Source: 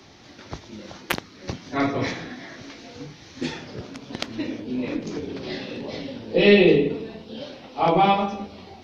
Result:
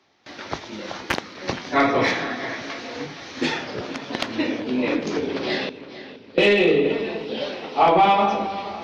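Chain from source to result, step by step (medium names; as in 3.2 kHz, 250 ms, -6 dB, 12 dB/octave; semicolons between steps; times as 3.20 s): gate with hold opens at -37 dBFS; 5.69–6.38 s: amplifier tone stack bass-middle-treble 6-0-2; compression 6:1, threshold -19 dBFS, peak gain reduction 9.5 dB; overdrive pedal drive 18 dB, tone 2.5 kHz, clips at -3.5 dBFS; feedback echo behind a low-pass 468 ms, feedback 43%, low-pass 4 kHz, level -14.5 dB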